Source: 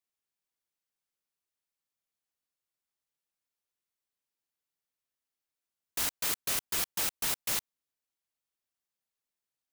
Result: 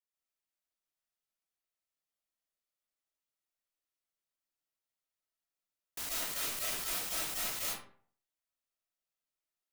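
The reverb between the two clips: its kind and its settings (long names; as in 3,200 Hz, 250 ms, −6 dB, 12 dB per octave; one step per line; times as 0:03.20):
comb and all-pass reverb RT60 0.52 s, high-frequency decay 0.6×, pre-delay 95 ms, DRR −6 dB
level −9.5 dB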